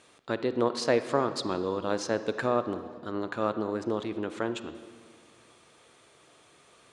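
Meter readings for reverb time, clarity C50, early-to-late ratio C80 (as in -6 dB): 1.9 s, 11.5 dB, 12.5 dB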